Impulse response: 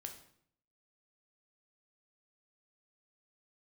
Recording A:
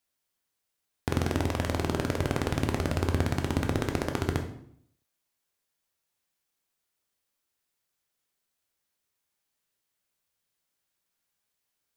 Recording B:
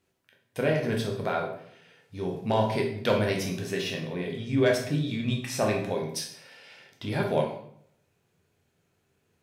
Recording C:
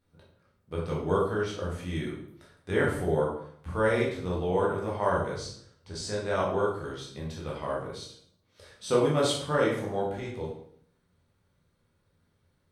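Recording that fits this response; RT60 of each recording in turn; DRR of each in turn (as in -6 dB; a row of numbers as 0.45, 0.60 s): A; 0.65, 0.65, 0.65 s; 4.0, -0.5, -5.0 dB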